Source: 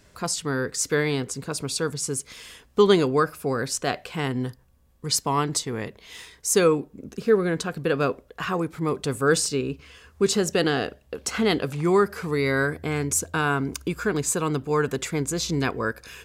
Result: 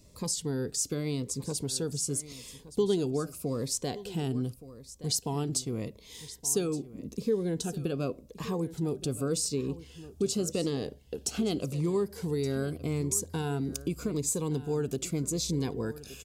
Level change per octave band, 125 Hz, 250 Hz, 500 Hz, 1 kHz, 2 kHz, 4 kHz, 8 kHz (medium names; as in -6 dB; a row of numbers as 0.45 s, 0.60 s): -3.5 dB, -5.5 dB, -8.5 dB, -15.0 dB, -19.5 dB, -7.5 dB, -4.5 dB